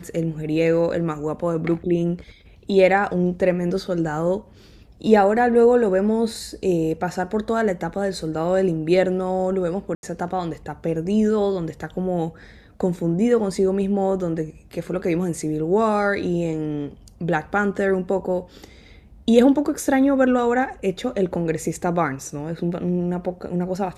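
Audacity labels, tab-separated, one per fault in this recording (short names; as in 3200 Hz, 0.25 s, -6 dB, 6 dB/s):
9.950000	10.030000	gap 81 ms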